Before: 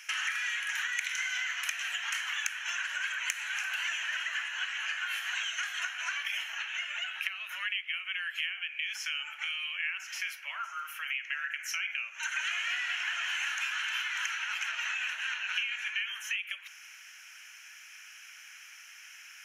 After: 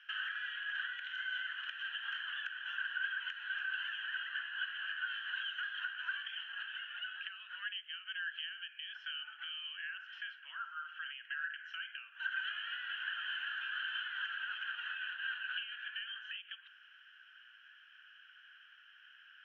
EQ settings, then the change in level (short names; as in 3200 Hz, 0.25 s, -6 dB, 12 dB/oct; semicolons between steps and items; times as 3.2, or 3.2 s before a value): double band-pass 2200 Hz, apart 0.96 oct; air absorption 380 m; +3.0 dB